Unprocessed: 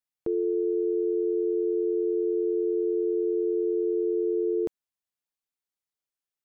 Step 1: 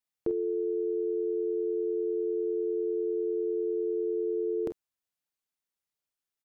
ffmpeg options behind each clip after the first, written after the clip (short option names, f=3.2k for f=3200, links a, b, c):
-af "aecho=1:1:33|47:0.211|0.282"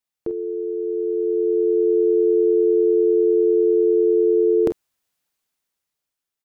-af "dynaudnorm=f=390:g=7:m=10.5dB,volume=3dB"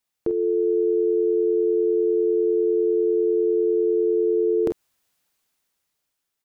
-af "alimiter=limit=-19.5dB:level=0:latency=1:release=153,volume=5dB"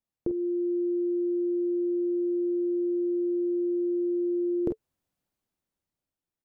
-af "tiltshelf=f=760:g=8.5,bandreject=f=440:w=12,volume=-7.5dB"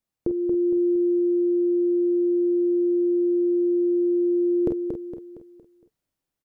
-af "aecho=1:1:231|462|693|924|1155:0.501|0.216|0.0927|0.0398|0.0171,volume=4dB"